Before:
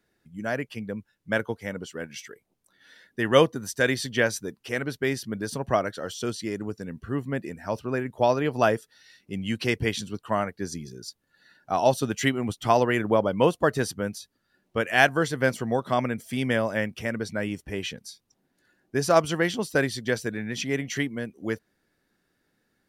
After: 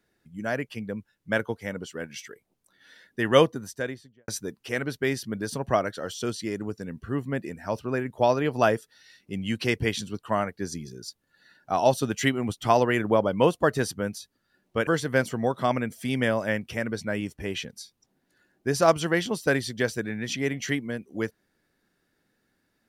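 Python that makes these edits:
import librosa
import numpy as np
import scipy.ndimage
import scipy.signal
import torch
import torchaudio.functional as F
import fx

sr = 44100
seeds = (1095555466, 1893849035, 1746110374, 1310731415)

y = fx.studio_fade_out(x, sr, start_s=3.36, length_s=0.92)
y = fx.edit(y, sr, fx.cut(start_s=14.87, length_s=0.28), tone=tone)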